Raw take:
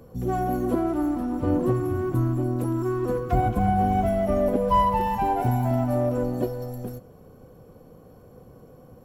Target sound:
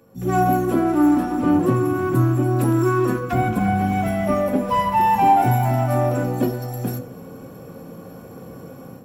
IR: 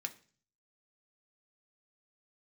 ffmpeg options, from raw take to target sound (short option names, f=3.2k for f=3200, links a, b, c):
-filter_complex "[0:a]dynaudnorm=f=160:g=3:m=15.5dB[a];[1:a]atrim=start_sample=2205[b];[a][b]afir=irnorm=-1:irlink=0"